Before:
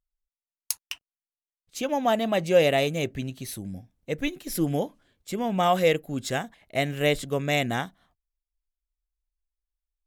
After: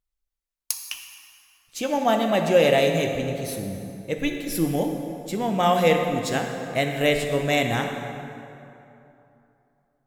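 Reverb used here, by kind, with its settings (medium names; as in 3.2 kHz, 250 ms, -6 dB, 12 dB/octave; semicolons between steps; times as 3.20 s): plate-style reverb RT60 2.9 s, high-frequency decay 0.6×, DRR 3 dB; trim +1.5 dB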